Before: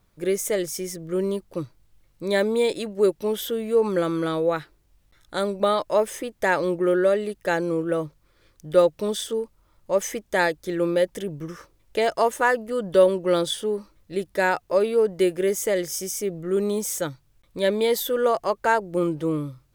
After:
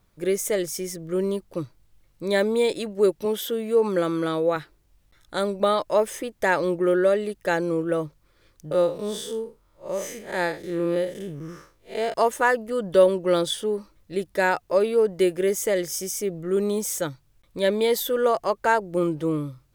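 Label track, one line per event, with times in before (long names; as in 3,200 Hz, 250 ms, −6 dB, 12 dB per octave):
3.250000	4.560000	high-pass filter 130 Hz
8.710000	12.140000	spectrum smeared in time width 129 ms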